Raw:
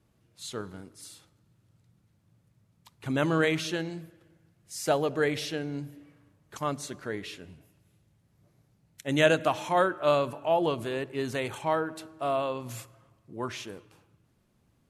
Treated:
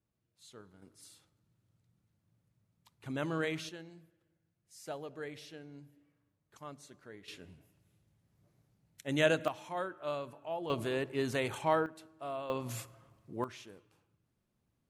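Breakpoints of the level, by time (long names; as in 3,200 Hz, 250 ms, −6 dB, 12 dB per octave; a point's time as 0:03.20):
−17 dB
from 0:00.82 −9.5 dB
from 0:03.69 −16.5 dB
from 0:07.28 −6 dB
from 0:09.48 −13.5 dB
from 0:10.70 −2 dB
from 0:11.86 −11.5 dB
from 0:12.50 −1 dB
from 0:13.44 −11.5 dB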